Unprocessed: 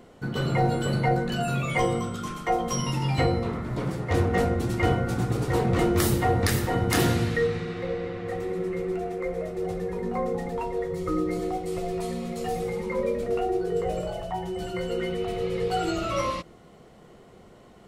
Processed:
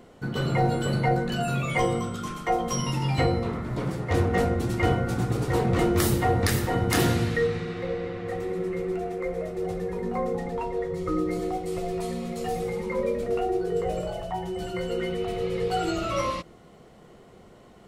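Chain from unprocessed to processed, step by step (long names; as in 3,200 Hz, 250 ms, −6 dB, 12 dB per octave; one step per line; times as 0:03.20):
0:10.39–0:11.19: high-shelf EQ 9,600 Hz −8 dB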